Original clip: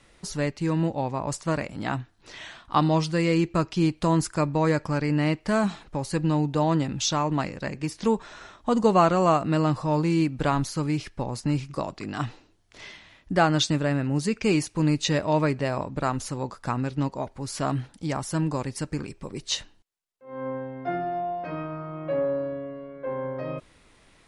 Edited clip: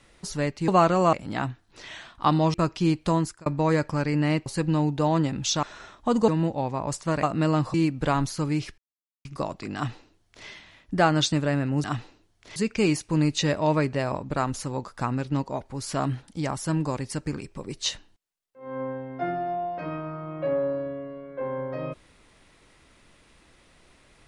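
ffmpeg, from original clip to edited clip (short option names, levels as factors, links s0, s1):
-filter_complex "[0:a]asplit=14[s0][s1][s2][s3][s4][s5][s6][s7][s8][s9][s10][s11][s12][s13];[s0]atrim=end=0.682[s14];[s1]atrim=start=8.888:end=9.342[s15];[s2]atrim=start=1.628:end=3.042[s16];[s3]atrim=start=3.498:end=4.42,asetpts=PTS-STARTPTS,afade=t=out:st=0.572:d=0.35[s17];[s4]atrim=start=4.42:end=5.422,asetpts=PTS-STARTPTS,afade=t=in:d=0.004:c=hsin[s18];[s5]atrim=start=6.018:end=7.192[s19];[s6]atrim=start=8.238:end=8.892[s20];[s7]atrim=start=0.678:end=1.632[s21];[s8]atrim=start=9.338:end=9.852[s22];[s9]atrim=start=10.118:end=11.16,asetpts=PTS-STARTPTS,afade=t=out:st=1.038:d=0.004:c=hsin[s23];[s10]atrim=start=11.16:end=11.63,asetpts=PTS-STARTPTS,volume=0[s24];[s11]atrim=start=11.63:end=14.222,asetpts=PTS-STARTPTS,afade=t=in:d=0.004:c=hsin[s25];[s12]atrim=start=12.128:end=12.852[s26];[s13]atrim=start=14.218[s27];[s14][s15]acrossfade=d=0.004:c1=hsin:c2=hsin[s28];[s28][s16]acrossfade=d=0.004:c1=hsin:c2=hsin[s29];[s17][s18]concat=n=2:v=0:a=1[s30];[s29][s30]acrossfade=d=0.004:c1=hsin:c2=hsin[s31];[s31][s19]acrossfade=d=0.004:c1=hsin:c2=hsin[s32];[s32][s20]acrossfade=d=0.004:c1=hsin:c2=hsin[s33];[s33][s21]acrossfade=d=0.004:c1=hsin:c2=hsin[s34];[s34][s22]acrossfade=d=0.004:c1=hsin:c2=hsin[s35];[s23][s24][s25]concat=n=3:v=0:a=1[s36];[s35][s36]acrossfade=d=0.004:c1=hsin:c2=hsin[s37];[s37][s26]acrossfade=d=0.004:c1=hsin:c2=hsin[s38];[s38][s27]acrossfade=d=0.004:c1=hsin:c2=hsin"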